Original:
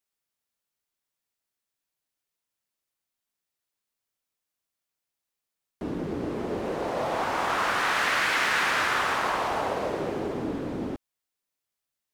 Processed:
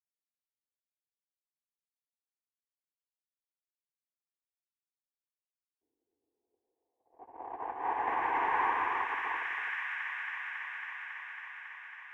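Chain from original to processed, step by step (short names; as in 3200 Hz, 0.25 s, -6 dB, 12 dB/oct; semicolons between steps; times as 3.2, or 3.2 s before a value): tilt +1.5 dB/oct; fixed phaser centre 890 Hz, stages 8; gate -26 dBFS, range -58 dB; on a send: thin delay 0.275 s, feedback 82%, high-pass 2100 Hz, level -4 dB; on the sum: soft clip -20.5 dBFS, distortion -18 dB; low-pass sweep 620 Hz -> 1400 Hz, 6.98–9.71; in parallel at -2 dB: compressor, threshold -39 dBFS, peak gain reduction 12.5 dB; on the sum: bell 12000 Hz +11 dB 0.25 oct; gain -1.5 dB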